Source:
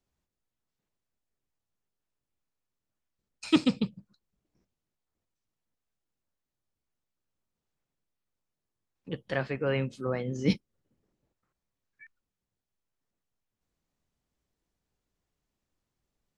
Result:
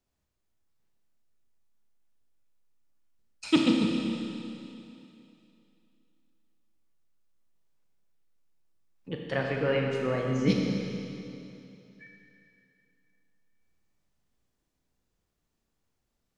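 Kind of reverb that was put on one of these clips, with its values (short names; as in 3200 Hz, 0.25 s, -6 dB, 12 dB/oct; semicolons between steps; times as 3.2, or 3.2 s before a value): Schroeder reverb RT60 2.8 s, combs from 27 ms, DRR 0 dB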